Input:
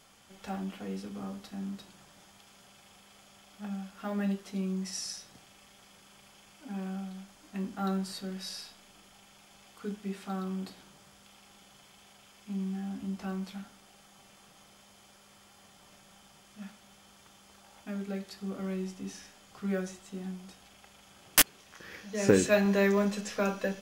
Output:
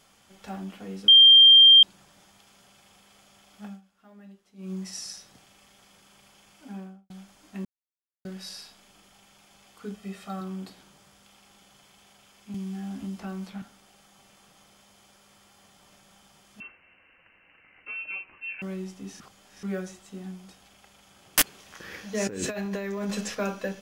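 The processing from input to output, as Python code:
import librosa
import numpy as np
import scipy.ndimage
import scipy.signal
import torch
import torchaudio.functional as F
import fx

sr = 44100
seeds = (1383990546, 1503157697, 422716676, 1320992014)

y = fx.studio_fade_out(x, sr, start_s=6.67, length_s=0.43)
y = fx.comb(y, sr, ms=1.6, depth=0.56, at=(9.94, 10.41))
y = fx.band_squash(y, sr, depth_pct=100, at=(12.54, 13.62))
y = fx.freq_invert(y, sr, carrier_hz=2900, at=(16.6, 18.62))
y = fx.over_compress(y, sr, threshold_db=-31.0, ratio=-1.0, at=(21.42, 23.35))
y = fx.edit(y, sr, fx.bleep(start_s=1.08, length_s=0.75, hz=3180.0, db=-9.5),
    fx.fade_down_up(start_s=3.65, length_s=1.08, db=-18.0, fade_s=0.16),
    fx.silence(start_s=7.65, length_s=0.6),
    fx.reverse_span(start_s=19.2, length_s=0.43), tone=tone)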